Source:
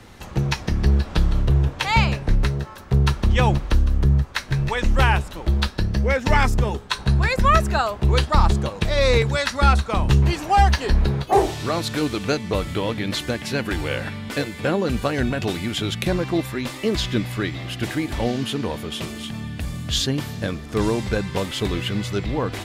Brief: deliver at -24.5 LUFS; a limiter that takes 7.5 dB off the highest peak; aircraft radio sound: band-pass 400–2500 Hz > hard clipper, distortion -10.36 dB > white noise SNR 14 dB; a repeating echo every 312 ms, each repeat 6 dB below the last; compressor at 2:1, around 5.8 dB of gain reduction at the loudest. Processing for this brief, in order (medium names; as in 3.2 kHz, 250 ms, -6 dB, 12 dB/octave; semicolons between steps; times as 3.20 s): compression 2:1, threshold -22 dBFS; peak limiter -15.5 dBFS; band-pass 400–2500 Hz; feedback delay 312 ms, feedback 50%, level -6 dB; hard clipper -27 dBFS; white noise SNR 14 dB; trim +8 dB